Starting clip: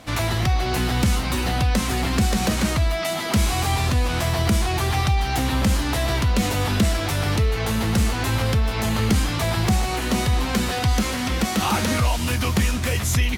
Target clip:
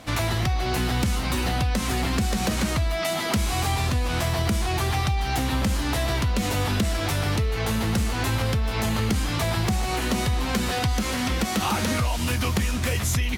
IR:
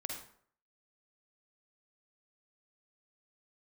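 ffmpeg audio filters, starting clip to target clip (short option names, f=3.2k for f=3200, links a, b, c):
-af "acompressor=threshold=-20dB:ratio=6"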